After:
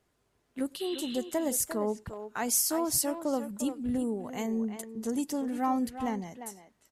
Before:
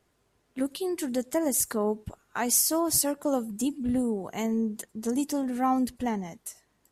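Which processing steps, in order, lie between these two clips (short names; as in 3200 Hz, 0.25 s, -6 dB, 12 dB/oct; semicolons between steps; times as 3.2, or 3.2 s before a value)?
spectral repair 0.82–1.16, 1200–4200 Hz before; speakerphone echo 0.35 s, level -9 dB; gain -3.5 dB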